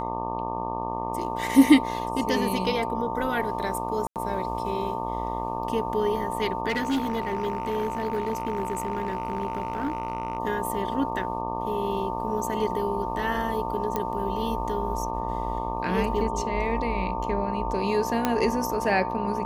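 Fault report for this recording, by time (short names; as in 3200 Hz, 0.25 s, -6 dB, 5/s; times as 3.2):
buzz 60 Hz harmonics 20 -33 dBFS
tone 900 Hz -32 dBFS
4.07–4.16 gap 88 ms
6.68–10.38 clipped -21.5 dBFS
13.96 pop -13 dBFS
18.25 pop -8 dBFS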